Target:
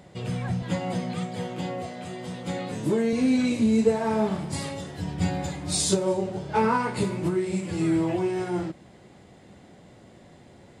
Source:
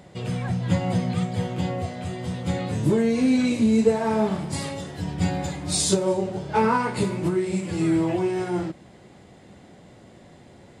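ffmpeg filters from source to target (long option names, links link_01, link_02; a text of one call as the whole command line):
ffmpeg -i in.wav -filter_complex "[0:a]asettb=1/sr,asplit=3[link_01][link_02][link_03];[link_01]atrim=end=0.624[link_04];[link_02]atrim=start=0.62:end=3.13,asetpts=PTS-STARTPTS,afade=type=in:duration=0.004:curve=qsin,afade=type=out:start_time=2.506:duration=0.004:curve=qsin,highpass=190[link_05];[link_03]atrim=start=3.126[link_06];[link_04][link_05]acrossfade=duration=0.004:curve1=hsin:curve2=qsin[link_07];[link_07][link_06]acrossfade=duration=0.004:curve1=qsin:curve2=hsin,volume=-2dB" out.wav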